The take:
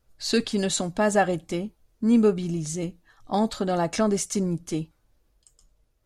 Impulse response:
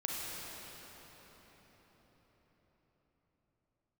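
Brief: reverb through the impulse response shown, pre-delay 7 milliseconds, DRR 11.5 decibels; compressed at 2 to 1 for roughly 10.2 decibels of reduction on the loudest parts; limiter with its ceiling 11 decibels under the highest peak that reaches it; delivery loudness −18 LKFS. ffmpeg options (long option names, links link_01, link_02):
-filter_complex "[0:a]acompressor=threshold=-34dB:ratio=2,alimiter=level_in=4.5dB:limit=-24dB:level=0:latency=1,volume=-4.5dB,asplit=2[link_01][link_02];[1:a]atrim=start_sample=2205,adelay=7[link_03];[link_02][link_03]afir=irnorm=-1:irlink=0,volume=-15.5dB[link_04];[link_01][link_04]amix=inputs=2:normalize=0,volume=20dB"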